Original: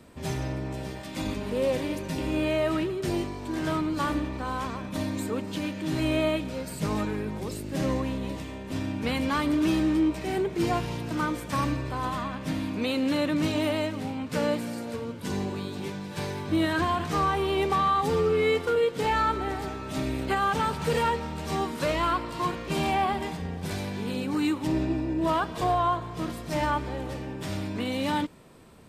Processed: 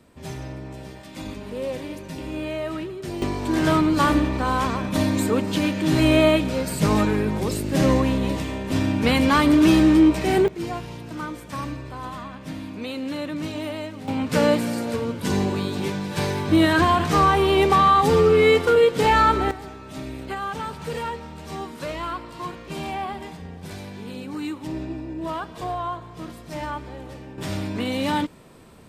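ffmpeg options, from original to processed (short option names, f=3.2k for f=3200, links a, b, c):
-af "asetnsamples=n=441:p=0,asendcmd='3.22 volume volume 9dB;10.48 volume volume -3.5dB;14.08 volume volume 8dB;19.51 volume volume -4dB;27.38 volume volume 4dB',volume=-3dB"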